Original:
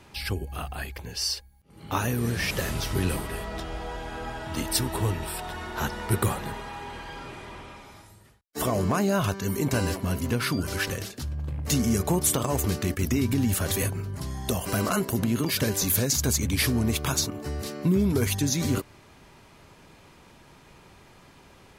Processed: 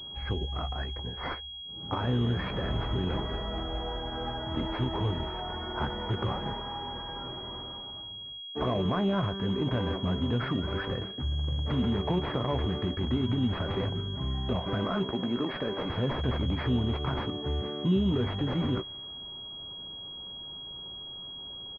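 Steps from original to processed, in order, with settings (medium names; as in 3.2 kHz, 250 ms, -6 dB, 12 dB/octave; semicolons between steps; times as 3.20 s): 15.11–15.90 s: high-pass 260 Hz 12 dB/octave; level-controlled noise filter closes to 1.2 kHz, open at -20.5 dBFS; peak limiter -20 dBFS, peak gain reduction 9 dB; doubling 16 ms -10 dB; class-D stage that switches slowly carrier 3.3 kHz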